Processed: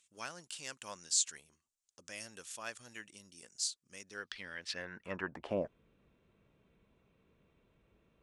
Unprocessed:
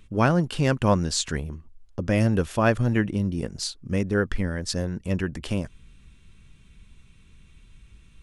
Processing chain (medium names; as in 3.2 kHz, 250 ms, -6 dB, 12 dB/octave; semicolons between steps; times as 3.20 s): band-pass sweep 7.4 kHz -> 560 Hz, 3.98–5.65 s; dynamic bell 7.1 kHz, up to -4 dB, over -59 dBFS, Q 1; trim +3.5 dB